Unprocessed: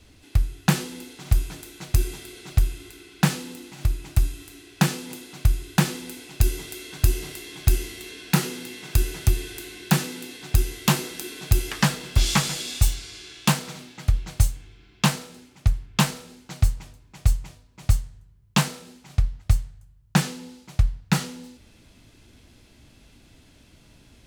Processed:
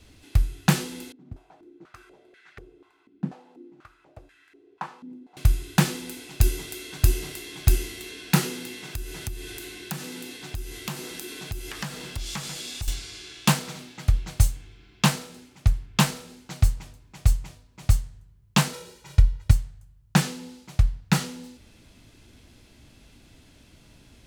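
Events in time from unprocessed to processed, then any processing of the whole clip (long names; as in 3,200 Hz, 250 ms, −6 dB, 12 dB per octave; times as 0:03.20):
0:01.12–0:05.37: band-pass on a step sequencer 4.1 Hz 250–1,700 Hz
0:08.79–0:12.88: downward compressor 3 to 1, threshold −33 dBFS
0:18.73–0:19.51: comb filter 2.1 ms, depth 89%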